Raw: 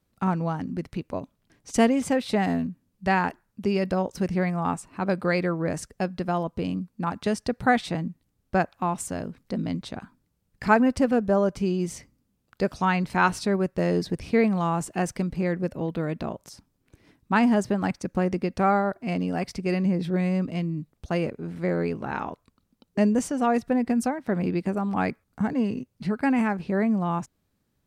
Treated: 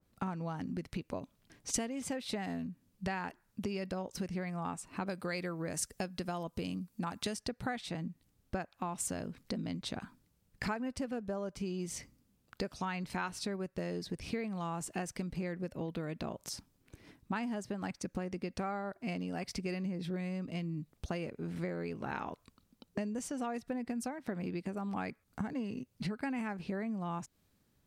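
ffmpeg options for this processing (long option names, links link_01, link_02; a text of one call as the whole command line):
ffmpeg -i in.wav -filter_complex "[0:a]asettb=1/sr,asplit=3[link_01][link_02][link_03];[link_01]atrim=end=5.074[link_04];[link_02]atrim=start=5.07:end=7.37,asetpts=PTS-STARTPTS,afade=type=in:duration=0.004:curve=qsin,afade=type=out:start_time=2.296:duration=0.004:curve=qsin,aemphasis=mode=production:type=cd[link_05];[link_03]atrim=start=7.366[link_06];[link_04][link_05]acrossfade=duration=0.004:curve1=hsin:curve2=qsin[link_07];[link_07][link_06]acrossfade=duration=0.004:curve1=qsin:curve2=hsin,acompressor=threshold=-35dB:ratio=8,adynamicequalizer=threshold=0.002:dfrequency=1900:dqfactor=0.7:tfrequency=1900:tqfactor=0.7:attack=5:release=100:ratio=0.375:range=2.5:mode=boostabove:tftype=highshelf" out.wav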